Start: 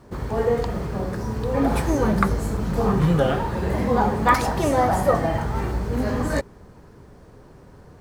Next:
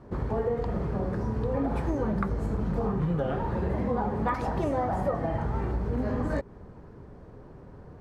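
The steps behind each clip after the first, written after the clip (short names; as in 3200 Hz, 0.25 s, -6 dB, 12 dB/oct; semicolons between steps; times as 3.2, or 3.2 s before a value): LPF 1200 Hz 6 dB/oct; compressor 5:1, threshold -25 dBFS, peak gain reduction 10.5 dB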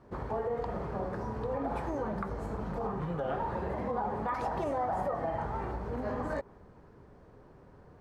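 dynamic EQ 810 Hz, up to +6 dB, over -43 dBFS, Q 0.81; limiter -18 dBFS, peak gain reduction 7.5 dB; low shelf 440 Hz -6.5 dB; gain -3.5 dB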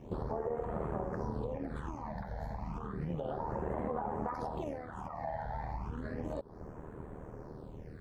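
compressor 5:1, threshold -43 dBFS, peak gain reduction 13 dB; AM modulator 77 Hz, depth 55%; phaser stages 8, 0.32 Hz, lowest notch 350–4900 Hz; gain +11 dB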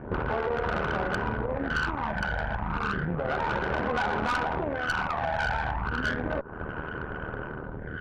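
in parallel at +3 dB: limiter -32 dBFS, peak gain reduction 7.5 dB; on the sum: synth low-pass 1500 Hz, resonance Q 14; tube stage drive 27 dB, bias 0.65; gain +5 dB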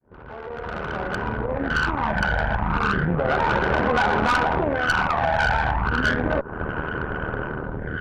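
opening faded in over 2.20 s; gain +7.5 dB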